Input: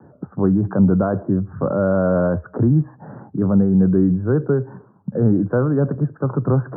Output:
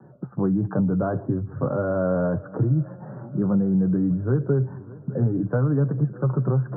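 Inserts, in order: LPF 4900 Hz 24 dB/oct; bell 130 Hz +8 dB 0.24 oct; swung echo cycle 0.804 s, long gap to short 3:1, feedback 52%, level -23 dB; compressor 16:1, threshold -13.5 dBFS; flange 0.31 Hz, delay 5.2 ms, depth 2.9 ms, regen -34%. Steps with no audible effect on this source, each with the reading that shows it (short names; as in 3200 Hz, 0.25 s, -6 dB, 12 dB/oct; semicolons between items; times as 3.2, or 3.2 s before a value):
LPF 4900 Hz: input band ends at 1400 Hz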